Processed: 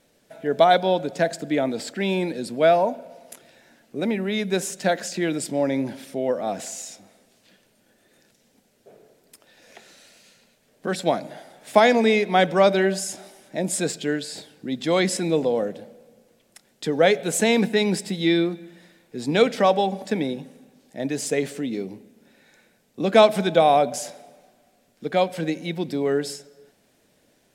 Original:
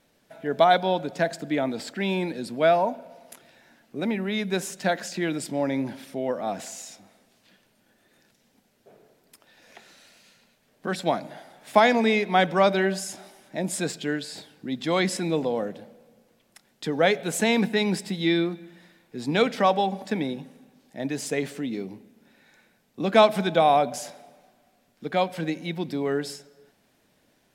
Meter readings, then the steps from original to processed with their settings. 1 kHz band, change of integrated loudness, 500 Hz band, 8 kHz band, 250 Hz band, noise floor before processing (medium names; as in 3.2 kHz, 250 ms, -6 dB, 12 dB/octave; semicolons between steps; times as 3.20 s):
+1.0 dB, +2.5 dB, +4.0 dB, +5.0 dB, +2.5 dB, -66 dBFS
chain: ten-band graphic EQ 500 Hz +4 dB, 1 kHz -3 dB, 8 kHz +4 dB; trim +1.5 dB